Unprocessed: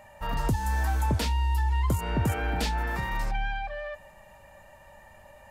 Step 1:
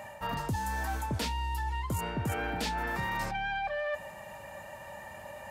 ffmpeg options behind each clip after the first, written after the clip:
-af "highpass=100,areverse,acompressor=threshold=0.0126:ratio=6,areverse,volume=2.37"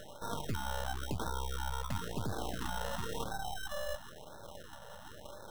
-af "acrusher=samples=19:mix=1:aa=0.000001,aeval=exprs='max(val(0),0)':c=same,afftfilt=real='re*(1-between(b*sr/1024,290*pow(2500/290,0.5+0.5*sin(2*PI*0.97*pts/sr))/1.41,290*pow(2500/290,0.5+0.5*sin(2*PI*0.97*pts/sr))*1.41))':imag='im*(1-between(b*sr/1024,290*pow(2500/290,0.5+0.5*sin(2*PI*0.97*pts/sr))/1.41,290*pow(2500/290,0.5+0.5*sin(2*PI*0.97*pts/sr))*1.41))':win_size=1024:overlap=0.75"

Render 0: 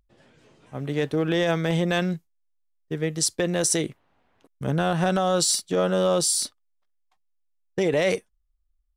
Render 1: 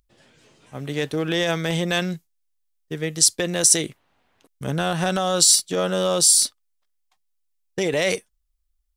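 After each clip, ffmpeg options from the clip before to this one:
-af "highshelf=f=2400:g=10,volume=0.891"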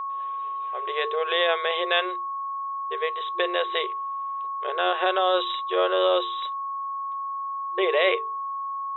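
-af "bandreject=f=50:t=h:w=6,bandreject=f=100:t=h:w=6,bandreject=f=150:t=h:w=6,bandreject=f=200:t=h:w=6,bandreject=f=250:t=h:w=6,bandreject=f=300:t=h:w=6,bandreject=f=350:t=h:w=6,bandreject=f=400:t=h:w=6,bandreject=f=450:t=h:w=6,aeval=exprs='val(0)+0.0355*sin(2*PI*1100*n/s)':c=same,afftfilt=real='re*between(b*sr/4096,350,3900)':imag='im*between(b*sr/4096,350,3900)':win_size=4096:overlap=0.75,volume=1.12"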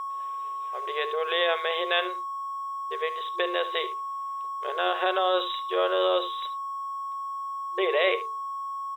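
-filter_complex "[0:a]aecho=1:1:73:0.178,asplit=2[s0][s1];[s1]aeval=exprs='val(0)*gte(abs(val(0)),0.0141)':c=same,volume=0.282[s2];[s0][s2]amix=inputs=2:normalize=0,volume=0.596"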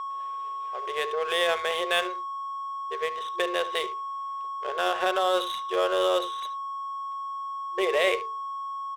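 -af "adynamicsmooth=sensitivity=7.5:basefreq=1900"

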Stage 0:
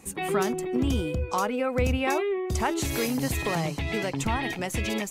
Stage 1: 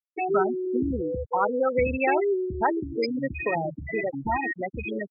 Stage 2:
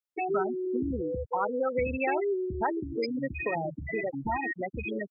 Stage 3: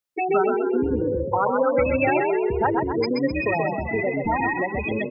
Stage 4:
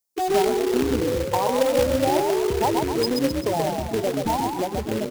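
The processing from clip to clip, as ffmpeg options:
-af "bandreject=f=1100:w=15,afftfilt=real='re*gte(hypot(re,im),0.126)':imag='im*gte(hypot(re,im),0.126)':win_size=1024:overlap=0.75,bass=f=250:g=-13,treble=f=4000:g=10,volume=1.88"
-af "acompressor=threshold=0.0282:ratio=1.5,volume=0.891"
-filter_complex "[0:a]asplit=7[s0][s1][s2][s3][s4][s5][s6];[s1]adelay=129,afreqshift=32,volume=0.631[s7];[s2]adelay=258,afreqshift=64,volume=0.295[s8];[s3]adelay=387,afreqshift=96,volume=0.14[s9];[s4]adelay=516,afreqshift=128,volume=0.0653[s10];[s5]adelay=645,afreqshift=160,volume=0.0309[s11];[s6]adelay=774,afreqshift=192,volume=0.0145[s12];[s0][s7][s8][s9][s10][s11][s12]amix=inputs=7:normalize=0,volume=2.11"
-af "asuperstop=centerf=2100:order=8:qfactor=0.62,highshelf=f=3300:g=8.5,acrusher=bits=2:mode=log:mix=0:aa=0.000001"

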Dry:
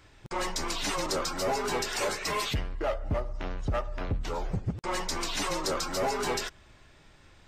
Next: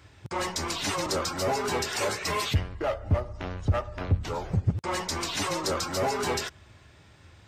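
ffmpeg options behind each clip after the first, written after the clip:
-af "highpass=69,equalizer=f=89:t=o:w=0.94:g=10,volume=1.19"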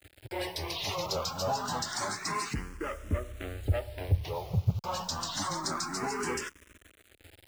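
-filter_complex "[0:a]acrusher=bits=7:mix=0:aa=0.000001,asplit=2[s0][s1];[s1]afreqshift=0.28[s2];[s0][s2]amix=inputs=2:normalize=1,volume=0.841"

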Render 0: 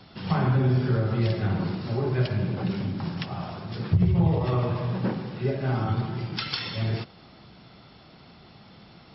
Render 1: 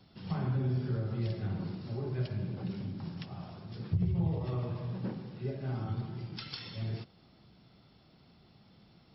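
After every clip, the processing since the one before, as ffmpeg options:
-af "equalizer=f=1400:w=0.36:g=-6.5,volume=0.376"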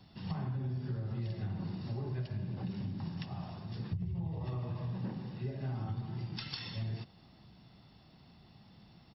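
-af "aecho=1:1:1.1:0.32,acompressor=threshold=0.0178:ratio=6,volume=1.12"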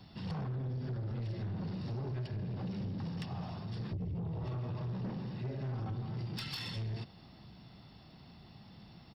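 -af "asoftclip=type=tanh:threshold=0.0126,volume=1.58"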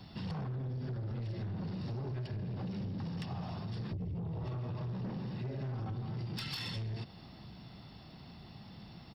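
-af "acompressor=threshold=0.01:ratio=6,volume=1.5"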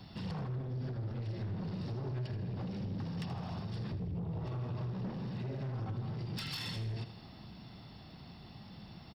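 -af "asoftclip=type=hard:threshold=0.0158,aecho=1:1:80|160|240|320|400:0.251|0.116|0.0532|0.0244|0.0112"

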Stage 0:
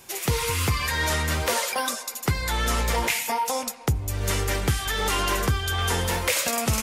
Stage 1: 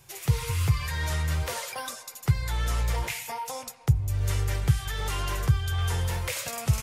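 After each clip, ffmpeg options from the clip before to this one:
-af "lowshelf=f=170:t=q:w=3:g=7.5,volume=0.376"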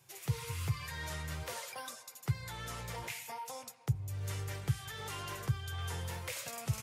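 -af "highpass=f=92:w=0.5412,highpass=f=92:w=1.3066,volume=0.355"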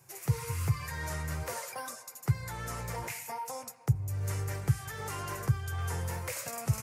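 -af "equalizer=f=3400:t=o:w=0.76:g=-12,volume=1.88"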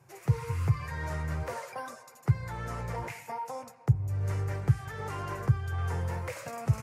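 -af "lowpass=f=1700:p=1,volume=1.41"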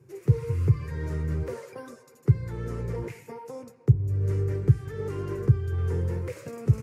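-af "lowshelf=f=540:t=q:w=3:g=9,volume=0.596"

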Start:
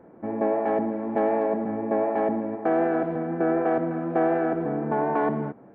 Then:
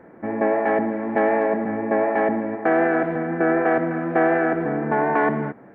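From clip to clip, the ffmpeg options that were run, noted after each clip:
-af "equalizer=f=1900:t=o:w=0.87:g=11,volume=1.41"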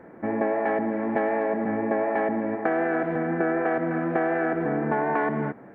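-af "acompressor=threshold=0.0891:ratio=6"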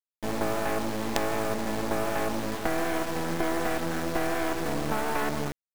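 -af "acrusher=bits=3:dc=4:mix=0:aa=0.000001"

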